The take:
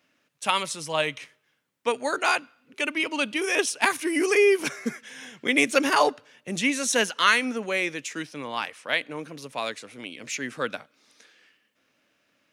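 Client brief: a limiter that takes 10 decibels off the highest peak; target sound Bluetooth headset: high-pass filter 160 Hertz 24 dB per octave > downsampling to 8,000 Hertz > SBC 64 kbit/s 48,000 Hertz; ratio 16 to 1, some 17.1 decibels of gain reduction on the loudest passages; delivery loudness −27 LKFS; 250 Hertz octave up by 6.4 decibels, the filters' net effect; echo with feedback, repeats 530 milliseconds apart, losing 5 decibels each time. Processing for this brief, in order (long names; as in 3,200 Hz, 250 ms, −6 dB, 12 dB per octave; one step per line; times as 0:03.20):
parametric band 250 Hz +8 dB
downward compressor 16 to 1, threshold −30 dBFS
brickwall limiter −26 dBFS
high-pass filter 160 Hz 24 dB per octave
repeating echo 530 ms, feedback 56%, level −5 dB
downsampling to 8,000 Hz
level +9.5 dB
SBC 64 kbit/s 48,000 Hz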